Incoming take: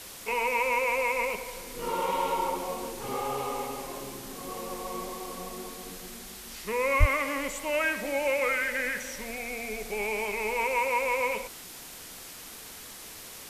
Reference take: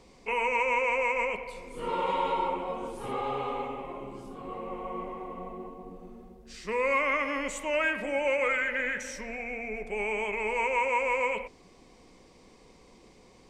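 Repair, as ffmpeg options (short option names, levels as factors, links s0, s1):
-filter_complex "[0:a]adeclick=t=4,asplit=3[s0][s1][s2];[s0]afade=t=out:st=6.99:d=0.02[s3];[s1]highpass=f=140:w=0.5412,highpass=f=140:w=1.3066,afade=t=in:st=6.99:d=0.02,afade=t=out:st=7.11:d=0.02[s4];[s2]afade=t=in:st=7.11:d=0.02[s5];[s3][s4][s5]amix=inputs=3:normalize=0,afwtdn=0.0071"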